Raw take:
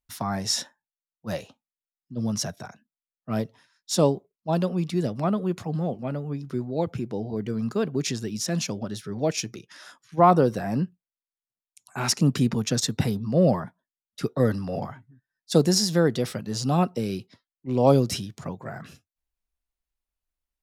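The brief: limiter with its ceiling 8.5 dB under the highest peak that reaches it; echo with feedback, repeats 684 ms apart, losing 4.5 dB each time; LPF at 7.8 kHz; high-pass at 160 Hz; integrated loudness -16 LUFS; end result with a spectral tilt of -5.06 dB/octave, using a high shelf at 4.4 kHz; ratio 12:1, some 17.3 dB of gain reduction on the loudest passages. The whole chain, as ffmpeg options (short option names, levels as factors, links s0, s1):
-af "highpass=160,lowpass=7800,highshelf=f=4400:g=-7,acompressor=threshold=0.0316:ratio=12,alimiter=level_in=1.33:limit=0.0631:level=0:latency=1,volume=0.75,aecho=1:1:684|1368|2052|2736|3420|4104|4788|5472|6156:0.596|0.357|0.214|0.129|0.0772|0.0463|0.0278|0.0167|0.01,volume=10.6"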